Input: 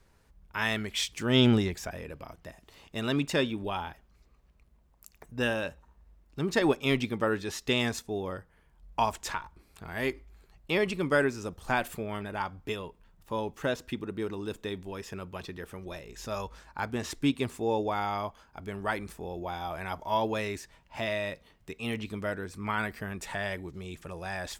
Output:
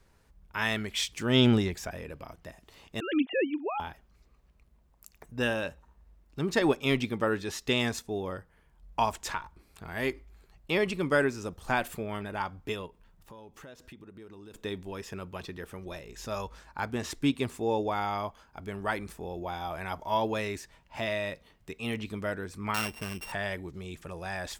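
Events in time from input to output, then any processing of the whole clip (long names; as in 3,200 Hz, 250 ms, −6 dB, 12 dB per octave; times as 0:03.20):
0:03.00–0:03.80: three sine waves on the formant tracks
0:12.86–0:14.54: downward compressor 5 to 1, threshold −47 dBFS
0:22.74–0:23.32: samples sorted by size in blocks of 16 samples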